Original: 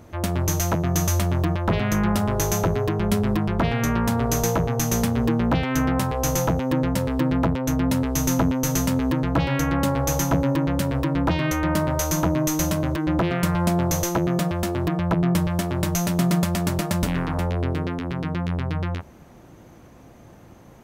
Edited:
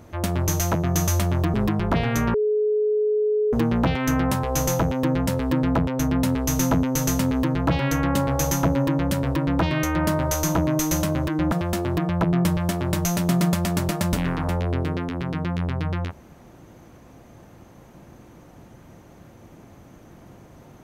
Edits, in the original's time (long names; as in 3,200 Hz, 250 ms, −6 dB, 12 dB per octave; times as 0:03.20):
0:01.54–0:03.22: remove
0:04.02–0:05.21: beep over 424 Hz −18 dBFS
0:13.20–0:14.42: remove